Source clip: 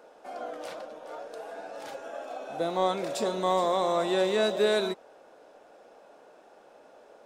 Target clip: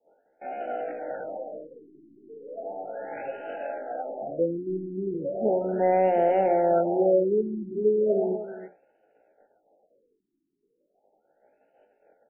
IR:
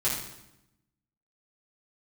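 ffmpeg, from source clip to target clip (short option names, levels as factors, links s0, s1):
-filter_complex "[0:a]acrossover=split=440[s0][s1];[s0]acompressor=threshold=0.0355:ratio=10[s2];[s2][s1]amix=inputs=2:normalize=0,atempo=0.59,bandreject=f=60:t=h:w=6,bandreject=f=120:t=h:w=6,bandreject=f=180:t=h:w=6,bandreject=f=240:t=h:w=6,bandreject=f=300:t=h:w=6,bandreject=f=360:t=h:w=6,aecho=1:1:318:0.211,agate=range=0.0224:threshold=0.00708:ratio=3:detection=peak,asuperstop=centerf=1100:order=8:qfactor=2.1,afftfilt=real='re*lt(b*sr/1024,380*pow(3100/380,0.5+0.5*sin(2*PI*0.36*pts/sr)))':imag='im*lt(b*sr/1024,380*pow(3100/380,0.5+0.5*sin(2*PI*0.36*pts/sr)))':win_size=1024:overlap=0.75,volume=1.88"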